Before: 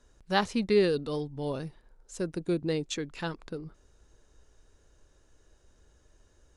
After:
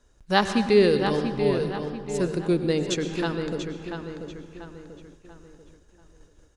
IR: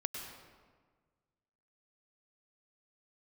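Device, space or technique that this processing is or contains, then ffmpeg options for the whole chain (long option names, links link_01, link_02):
keyed gated reverb: -filter_complex "[0:a]asplit=2[link_01][link_02];[link_02]adelay=688,lowpass=frequency=3800:poles=1,volume=-7dB,asplit=2[link_03][link_04];[link_04]adelay=688,lowpass=frequency=3800:poles=1,volume=0.43,asplit=2[link_05][link_06];[link_06]adelay=688,lowpass=frequency=3800:poles=1,volume=0.43,asplit=2[link_07][link_08];[link_08]adelay=688,lowpass=frequency=3800:poles=1,volume=0.43,asplit=2[link_09][link_10];[link_10]adelay=688,lowpass=frequency=3800:poles=1,volume=0.43[link_11];[link_01][link_03][link_05][link_07][link_09][link_11]amix=inputs=6:normalize=0,asplit=3[link_12][link_13][link_14];[1:a]atrim=start_sample=2205[link_15];[link_13][link_15]afir=irnorm=-1:irlink=0[link_16];[link_14]apad=whole_len=441338[link_17];[link_16][link_17]sidechaingate=range=-33dB:threshold=-56dB:ratio=16:detection=peak,volume=0dB[link_18];[link_12][link_18]amix=inputs=2:normalize=0"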